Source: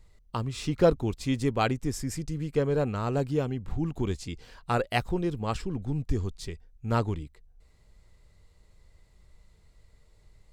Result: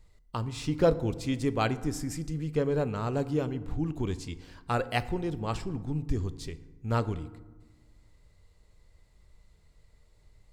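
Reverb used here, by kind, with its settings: FDN reverb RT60 1.2 s, low-frequency decay 1.4×, high-frequency decay 0.5×, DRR 13 dB; gain -2 dB

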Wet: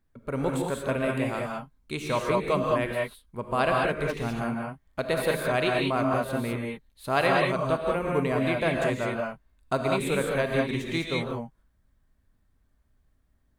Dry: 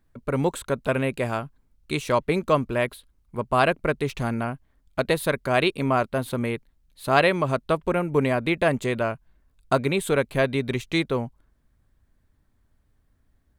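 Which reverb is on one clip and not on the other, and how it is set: non-linear reverb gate 0.23 s rising, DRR -1 dB; gain -6 dB

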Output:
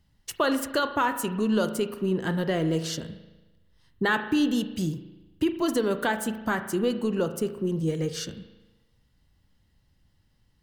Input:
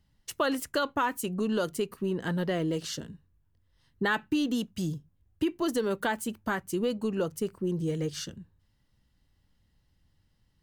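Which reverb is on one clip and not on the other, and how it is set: spring tank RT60 1.1 s, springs 37 ms, chirp 40 ms, DRR 9.5 dB; gain +3 dB

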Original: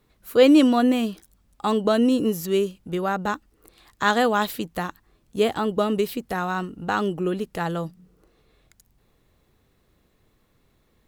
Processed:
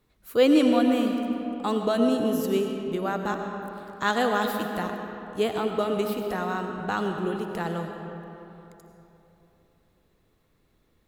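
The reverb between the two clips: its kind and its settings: digital reverb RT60 3.3 s, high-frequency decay 0.55×, pre-delay 55 ms, DRR 4 dB; gain -4.5 dB

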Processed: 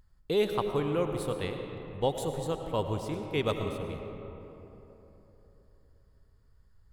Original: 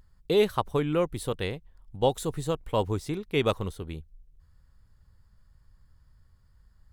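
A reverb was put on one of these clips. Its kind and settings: digital reverb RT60 3.6 s, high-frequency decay 0.45×, pre-delay 60 ms, DRR 5 dB; gain -4.5 dB

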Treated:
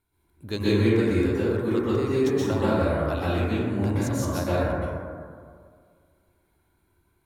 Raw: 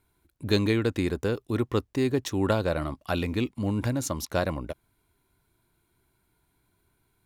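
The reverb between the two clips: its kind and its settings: plate-style reverb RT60 2 s, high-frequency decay 0.3×, pre-delay 0.11 s, DRR -9.5 dB; gain -7.5 dB

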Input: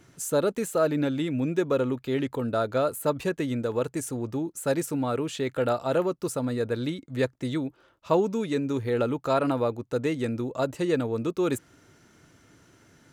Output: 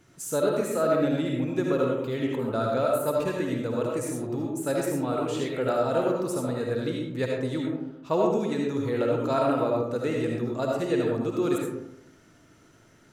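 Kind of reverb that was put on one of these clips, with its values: digital reverb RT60 0.89 s, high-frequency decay 0.4×, pre-delay 35 ms, DRR -1.5 dB; gain -3.5 dB

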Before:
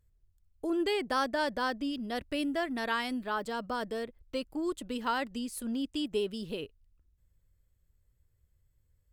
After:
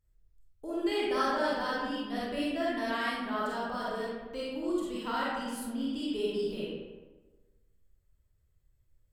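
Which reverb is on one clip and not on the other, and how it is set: digital reverb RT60 1.3 s, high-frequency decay 0.55×, pre-delay 5 ms, DRR -7.5 dB; gain -7.5 dB

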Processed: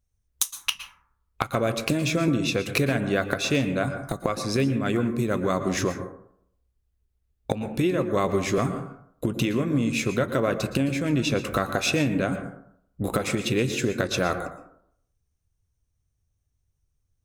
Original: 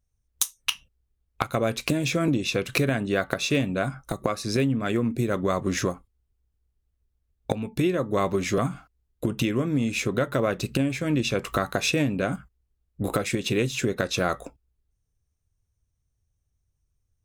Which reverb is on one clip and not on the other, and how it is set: plate-style reverb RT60 0.66 s, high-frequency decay 0.35×, pre-delay 0.105 s, DRR 9 dB

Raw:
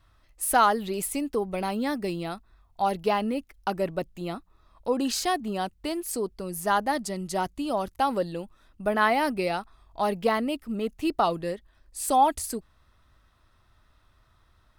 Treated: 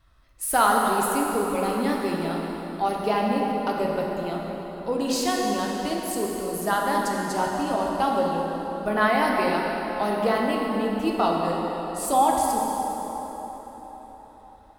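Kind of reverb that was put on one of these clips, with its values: plate-style reverb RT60 4.5 s, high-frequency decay 0.65×, DRR -2 dB; gain -1 dB

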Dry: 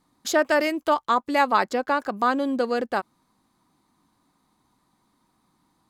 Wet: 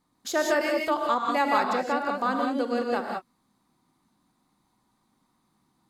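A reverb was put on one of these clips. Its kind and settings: non-linear reverb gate 0.21 s rising, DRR 0.5 dB; gain -5.5 dB

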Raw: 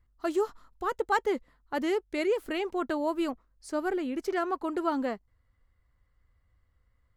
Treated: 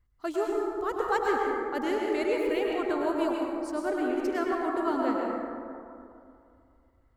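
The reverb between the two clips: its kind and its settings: plate-style reverb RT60 2.5 s, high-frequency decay 0.35×, pre-delay 90 ms, DRR -2 dB; gain -2.5 dB

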